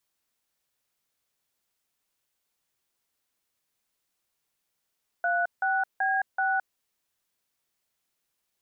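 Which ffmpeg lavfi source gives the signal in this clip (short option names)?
-f lavfi -i "aevalsrc='0.0531*clip(min(mod(t,0.381),0.216-mod(t,0.381))/0.002,0,1)*(eq(floor(t/0.381),0)*(sin(2*PI*697*mod(t,0.381))+sin(2*PI*1477*mod(t,0.381)))+eq(floor(t/0.381),1)*(sin(2*PI*770*mod(t,0.381))+sin(2*PI*1477*mod(t,0.381)))+eq(floor(t/0.381),2)*(sin(2*PI*770*mod(t,0.381))+sin(2*PI*1633*mod(t,0.381)))+eq(floor(t/0.381),3)*(sin(2*PI*770*mod(t,0.381))+sin(2*PI*1477*mod(t,0.381))))':d=1.524:s=44100"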